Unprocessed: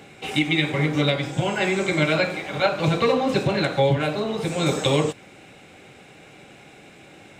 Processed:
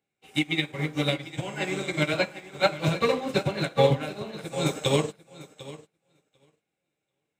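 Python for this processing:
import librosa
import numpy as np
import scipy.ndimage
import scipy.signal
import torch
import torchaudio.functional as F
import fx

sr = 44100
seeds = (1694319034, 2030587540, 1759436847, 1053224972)

y = fx.high_shelf(x, sr, hz=8700.0, db=11.5)
y = fx.echo_feedback(y, sr, ms=746, feedback_pct=34, wet_db=-7)
y = fx.upward_expand(y, sr, threshold_db=-41.0, expansion=2.5)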